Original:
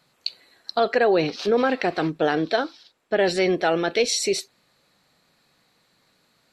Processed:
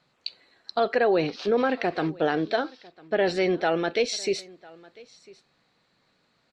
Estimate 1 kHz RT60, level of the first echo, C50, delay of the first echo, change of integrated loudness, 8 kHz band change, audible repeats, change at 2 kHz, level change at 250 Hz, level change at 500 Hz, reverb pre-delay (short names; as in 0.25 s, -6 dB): none, -23.5 dB, none, 1 s, -3.0 dB, -9.0 dB, 1, -3.5 dB, -2.5 dB, -2.5 dB, none